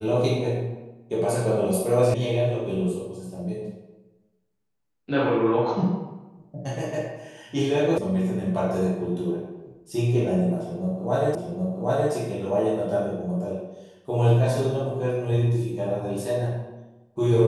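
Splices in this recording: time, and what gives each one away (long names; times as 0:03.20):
0:02.14: cut off before it has died away
0:07.98: cut off before it has died away
0:11.35: the same again, the last 0.77 s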